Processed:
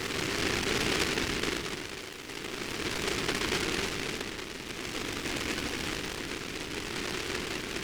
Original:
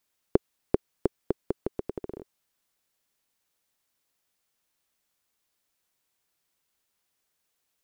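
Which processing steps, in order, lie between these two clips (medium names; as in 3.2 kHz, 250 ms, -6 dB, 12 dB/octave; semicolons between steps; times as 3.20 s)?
thinning echo 164 ms, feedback 47%, high-pass 600 Hz, level -4.5 dB; Paulstretch 13×, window 0.25 s, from 1.24 s; delay time shaken by noise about 2.1 kHz, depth 0.44 ms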